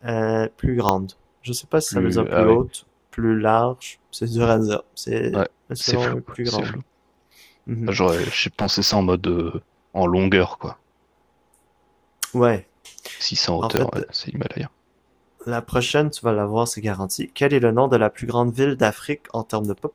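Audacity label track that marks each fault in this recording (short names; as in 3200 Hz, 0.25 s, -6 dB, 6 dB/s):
0.890000	0.890000	pop -3 dBFS
8.430000	8.960000	clipped -13.5 dBFS
13.770000	13.770000	pop -3 dBFS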